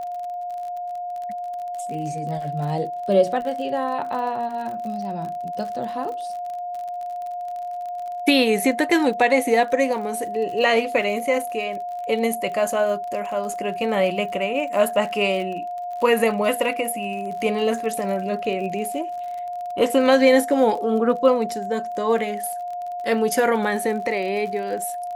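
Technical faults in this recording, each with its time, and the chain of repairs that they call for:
surface crackle 45 per second −31 dBFS
whistle 710 Hz −27 dBFS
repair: click removal
notch filter 710 Hz, Q 30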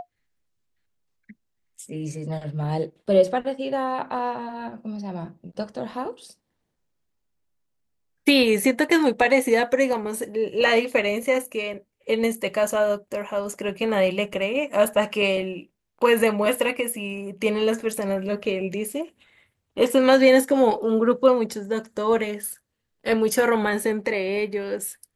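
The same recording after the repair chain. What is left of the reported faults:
none of them is left

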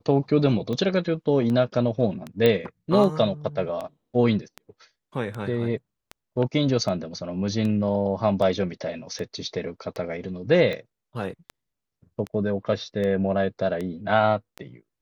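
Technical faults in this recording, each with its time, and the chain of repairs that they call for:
scratch tick 78 rpm −19 dBFS
0:02.46: click −9 dBFS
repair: click removal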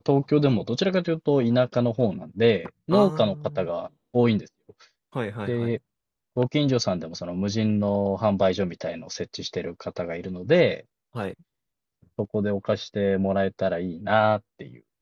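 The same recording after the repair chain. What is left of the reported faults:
none of them is left

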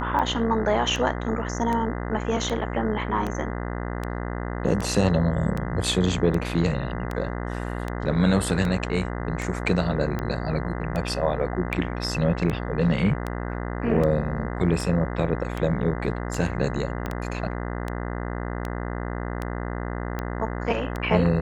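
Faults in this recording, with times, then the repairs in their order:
mains buzz 60 Hz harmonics 34 −30 dBFS
scratch tick 78 rpm −16 dBFS
0:17.06: click −16 dBFS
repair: click removal
hum removal 60 Hz, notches 34

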